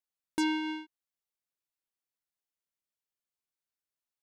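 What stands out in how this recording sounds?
noise floor -93 dBFS; spectral tilt -2.5 dB/octave

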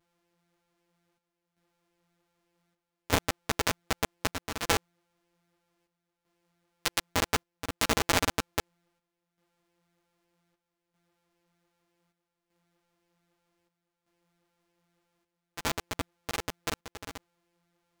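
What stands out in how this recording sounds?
a buzz of ramps at a fixed pitch in blocks of 256 samples; chopped level 0.64 Hz, depth 65%, duty 75%; a shimmering, thickened sound

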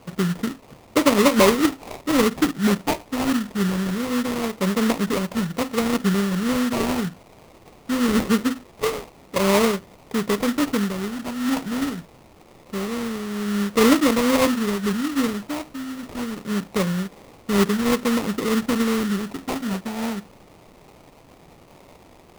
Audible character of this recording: a quantiser's noise floor 8-bit, dither triangular; phasing stages 8, 0.24 Hz, lowest notch 510–1700 Hz; aliases and images of a low sample rate 1.6 kHz, jitter 20%

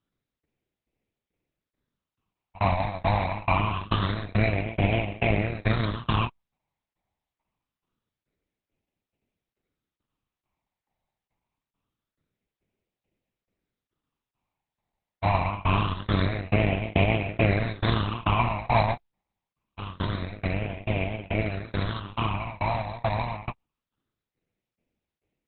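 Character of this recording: aliases and images of a low sample rate 1.7 kHz, jitter 20%; tremolo saw down 2.3 Hz, depth 100%; phasing stages 8, 0.25 Hz, lowest notch 400–1200 Hz; Opus

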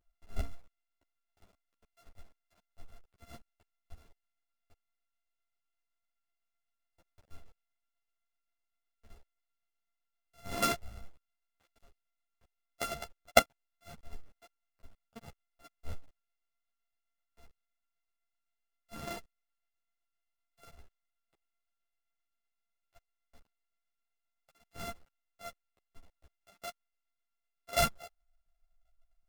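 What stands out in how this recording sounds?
a buzz of ramps at a fixed pitch in blocks of 64 samples; tremolo saw down 7.8 Hz, depth 45%; a shimmering, thickened sound

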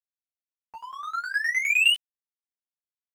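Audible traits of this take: tremolo saw down 9.7 Hz, depth 95%; a quantiser's noise floor 12-bit, dither none; a shimmering, thickened sound

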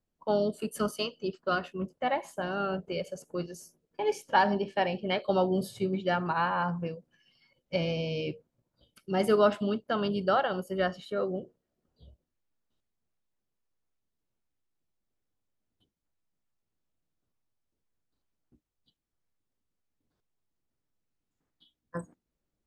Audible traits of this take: noise floor -85 dBFS; spectral tilt -4.0 dB/octave

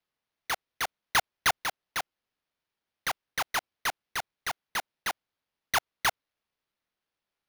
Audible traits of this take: aliases and images of a low sample rate 7.9 kHz, jitter 0%

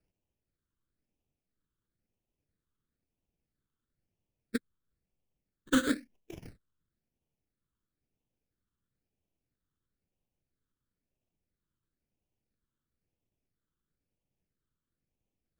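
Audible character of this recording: aliases and images of a low sample rate 2 kHz, jitter 20%; phasing stages 8, 1 Hz, lowest notch 700–1400 Hz

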